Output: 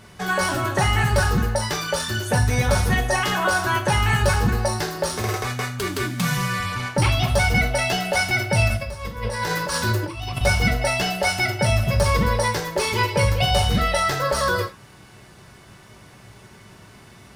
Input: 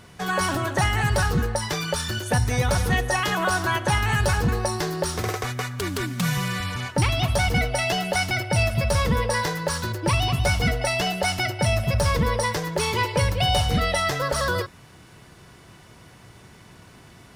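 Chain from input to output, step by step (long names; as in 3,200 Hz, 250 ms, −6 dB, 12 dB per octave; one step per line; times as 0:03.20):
0:08.68–0:10.41: compressor whose output falls as the input rises −27 dBFS, ratio −0.5
reverb whose tail is shaped and stops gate 120 ms falling, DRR 1.5 dB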